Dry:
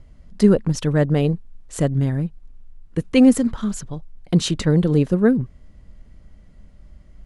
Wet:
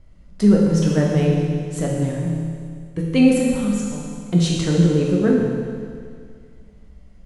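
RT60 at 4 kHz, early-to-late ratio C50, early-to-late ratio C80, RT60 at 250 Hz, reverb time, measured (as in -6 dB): 2.1 s, 0.0 dB, 1.5 dB, 2.1 s, 2.1 s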